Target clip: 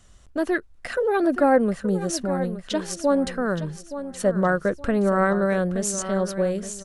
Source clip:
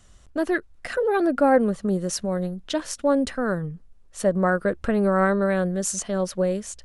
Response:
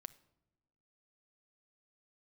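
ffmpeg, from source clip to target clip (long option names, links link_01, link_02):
-af "aecho=1:1:871|1742|2613:0.251|0.0804|0.0257"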